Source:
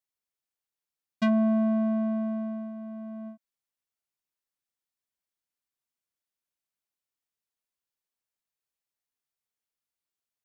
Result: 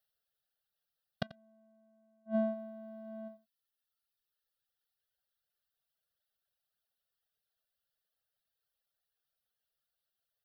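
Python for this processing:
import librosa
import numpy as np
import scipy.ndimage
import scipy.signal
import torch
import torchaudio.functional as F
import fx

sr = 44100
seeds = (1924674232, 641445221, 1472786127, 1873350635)

y = fx.gate_flip(x, sr, shuts_db=-26.0, range_db=-33)
y = fx.fixed_phaser(y, sr, hz=1500.0, stages=8)
y = fx.dereverb_blind(y, sr, rt60_s=1.8)
y = y + 10.0 ** (-18.0 / 20.0) * np.pad(y, (int(88 * sr / 1000.0), 0))[:len(y)]
y = F.gain(torch.from_numpy(y), 8.5).numpy()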